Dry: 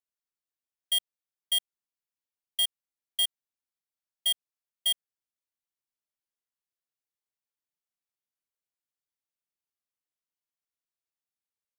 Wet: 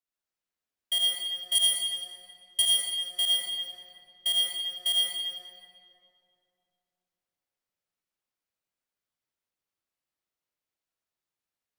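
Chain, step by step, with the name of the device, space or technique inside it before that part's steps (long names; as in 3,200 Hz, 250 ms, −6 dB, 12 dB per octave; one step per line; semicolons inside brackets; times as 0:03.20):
0:01.55–0:02.62: parametric band 9,800 Hz +12.5 dB 1.4 octaves
swimming-pool hall (convolution reverb RT60 2.7 s, pre-delay 63 ms, DRR −4.5 dB; high-shelf EQ 6,000 Hz −5 dB)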